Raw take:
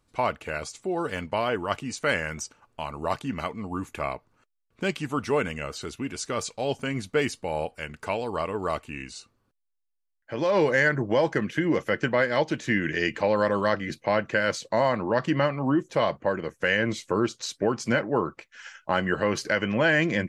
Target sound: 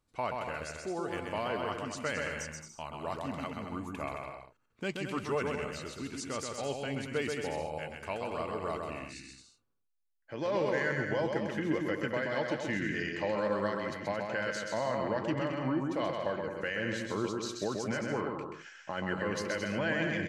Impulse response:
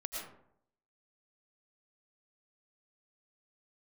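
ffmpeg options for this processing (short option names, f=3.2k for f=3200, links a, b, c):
-af "alimiter=limit=-14.5dB:level=0:latency=1,aecho=1:1:130|221|284.7|329.3|360.5:0.631|0.398|0.251|0.158|0.1,volume=-8.5dB"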